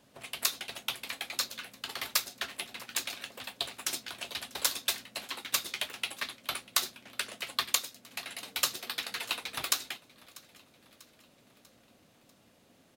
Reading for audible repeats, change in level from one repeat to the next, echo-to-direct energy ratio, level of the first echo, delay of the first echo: 3, -5.5 dB, -20.5 dB, -22.0 dB, 643 ms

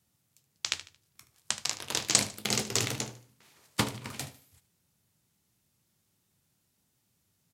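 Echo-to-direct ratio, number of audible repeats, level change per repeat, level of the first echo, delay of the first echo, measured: -14.5 dB, 3, -10.0 dB, -15.0 dB, 75 ms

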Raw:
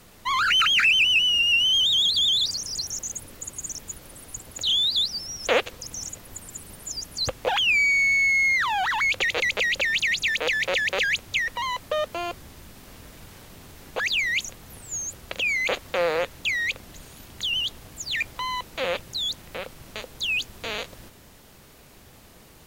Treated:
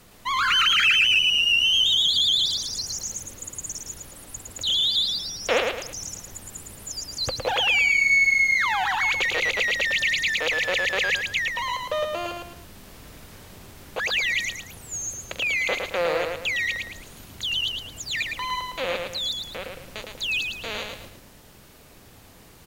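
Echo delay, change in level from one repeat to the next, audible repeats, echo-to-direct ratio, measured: 110 ms, -8.5 dB, 3, -4.0 dB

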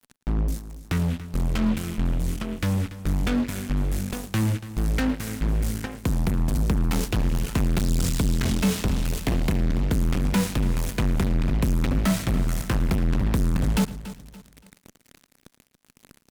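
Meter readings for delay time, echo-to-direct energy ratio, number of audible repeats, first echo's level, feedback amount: 111 ms, -13.0 dB, 5, -19.0 dB, no regular repeats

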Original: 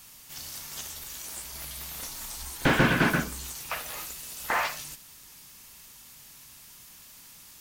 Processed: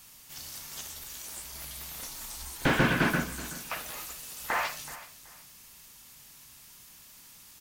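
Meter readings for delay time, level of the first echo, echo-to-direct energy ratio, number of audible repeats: 377 ms, -16.5 dB, -16.0 dB, 2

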